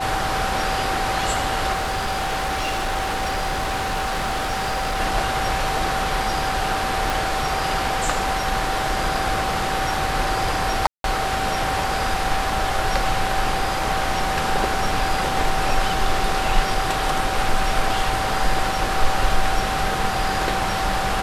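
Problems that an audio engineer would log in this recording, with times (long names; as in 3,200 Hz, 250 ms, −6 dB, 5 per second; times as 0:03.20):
whistle 770 Hz −25 dBFS
0:01.72–0:05.01: clipping −20 dBFS
0:07.10: click
0:10.87–0:11.04: drop-out 172 ms
0:13.80: drop-out 2.1 ms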